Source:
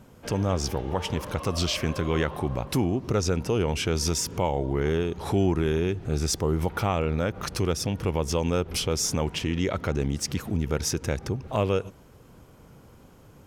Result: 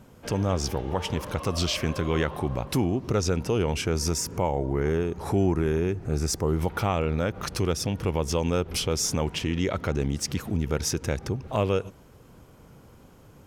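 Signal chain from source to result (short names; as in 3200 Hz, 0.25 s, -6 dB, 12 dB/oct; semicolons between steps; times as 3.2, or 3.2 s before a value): 3.81–6.47 bell 3400 Hz -9 dB 0.7 oct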